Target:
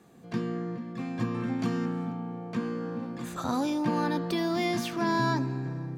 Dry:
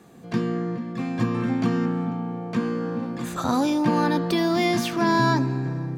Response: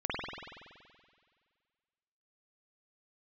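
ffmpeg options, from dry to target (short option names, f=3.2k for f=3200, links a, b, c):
-filter_complex "[0:a]asettb=1/sr,asplit=3[a][b][c];[a]atrim=end=1.594[d];[b]atrim=start=1.59:end=2.12,asetpts=PTS-STARTPTS,afade=t=in:d=0.004:c=qsin,afade=t=out:st=0.526:d=0.004:c=qsin,highshelf=f=4.9k:g=7.5[e];[c]atrim=start=2.116[f];[d][e]acrossfade=d=0.004:c1=hsin:c2=qsin[g];[g][f]acrossfade=d=0.004:c1=qsin:c2=hsin,volume=-6.5dB"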